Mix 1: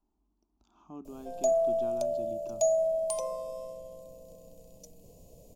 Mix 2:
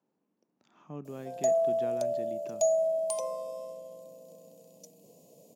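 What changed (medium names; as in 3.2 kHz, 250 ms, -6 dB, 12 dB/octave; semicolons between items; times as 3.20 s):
speech: remove static phaser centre 510 Hz, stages 6; master: add high-pass 170 Hz 24 dB/octave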